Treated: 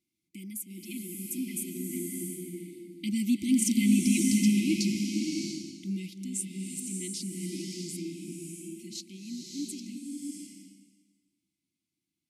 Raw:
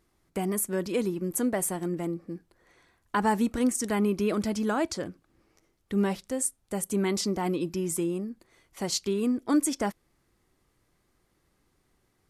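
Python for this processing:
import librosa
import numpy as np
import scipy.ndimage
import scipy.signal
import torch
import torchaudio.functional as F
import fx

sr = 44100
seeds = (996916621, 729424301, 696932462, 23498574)

y = fx.doppler_pass(x, sr, speed_mps=12, closest_m=3.9, pass_at_s=3.92)
y = scipy.signal.sosfilt(scipy.signal.butter(2, 180.0, 'highpass', fs=sr, output='sos'), y)
y = fx.rider(y, sr, range_db=4, speed_s=0.5)
y = fx.brickwall_bandstop(y, sr, low_hz=360.0, high_hz=2000.0)
y = fx.band_shelf(y, sr, hz=1200.0, db=-10.5, octaves=1.3)
y = fx.rev_bloom(y, sr, seeds[0], attack_ms=660, drr_db=0.0)
y = y * librosa.db_to_amplitude(8.5)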